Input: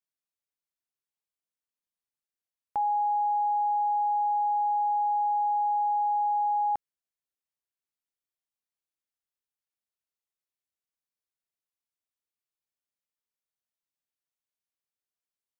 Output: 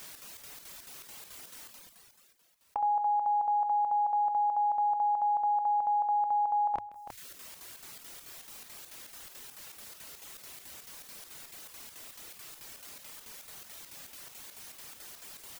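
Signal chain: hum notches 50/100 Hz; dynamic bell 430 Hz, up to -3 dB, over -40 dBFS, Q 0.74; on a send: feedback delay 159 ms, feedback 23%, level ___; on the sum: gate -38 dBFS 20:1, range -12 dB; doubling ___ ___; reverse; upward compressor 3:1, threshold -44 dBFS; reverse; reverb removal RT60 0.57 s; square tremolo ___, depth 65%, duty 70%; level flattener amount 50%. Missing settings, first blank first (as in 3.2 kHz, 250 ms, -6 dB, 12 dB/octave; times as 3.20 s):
-21.5 dB, 28 ms, -7 dB, 4.6 Hz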